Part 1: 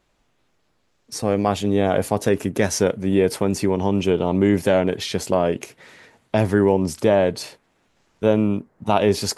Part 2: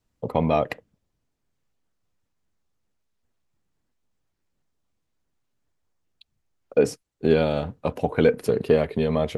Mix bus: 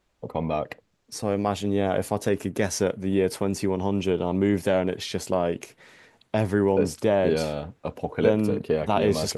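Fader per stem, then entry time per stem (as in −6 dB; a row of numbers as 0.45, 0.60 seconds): −5.0, −5.5 decibels; 0.00, 0.00 seconds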